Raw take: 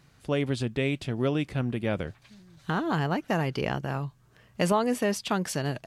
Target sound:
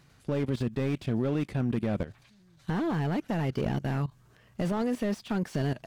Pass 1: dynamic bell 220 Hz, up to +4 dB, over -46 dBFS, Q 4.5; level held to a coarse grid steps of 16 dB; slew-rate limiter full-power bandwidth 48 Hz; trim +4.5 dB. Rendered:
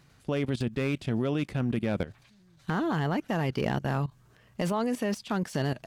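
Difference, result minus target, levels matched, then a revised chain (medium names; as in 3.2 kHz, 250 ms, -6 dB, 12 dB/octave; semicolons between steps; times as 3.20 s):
slew-rate limiter: distortion -11 dB
dynamic bell 220 Hz, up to +4 dB, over -46 dBFS, Q 4.5; level held to a coarse grid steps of 16 dB; slew-rate limiter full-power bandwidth 16.5 Hz; trim +4.5 dB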